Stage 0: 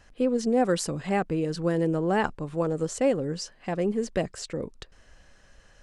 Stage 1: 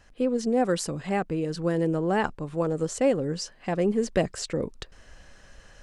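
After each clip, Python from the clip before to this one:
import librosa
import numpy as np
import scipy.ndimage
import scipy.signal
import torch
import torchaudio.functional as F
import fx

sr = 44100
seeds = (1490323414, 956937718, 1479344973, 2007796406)

y = fx.rider(x, sr, range_db=5, speed_s=2.0)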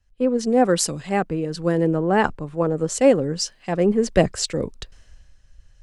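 y = fx.band_widen(x, sr, depth_pct=70)
y = y * librosa.db_to_amplitude(5.5)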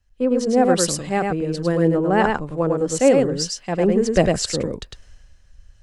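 y = x + 10.0 ** (-3.5 / 20.0) * np.pad(x, (int(103 * sr / 1000.0), 0))[:len(x)]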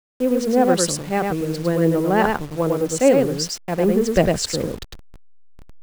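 y = fx.delta_hold(x, sr, step_db=-33.0)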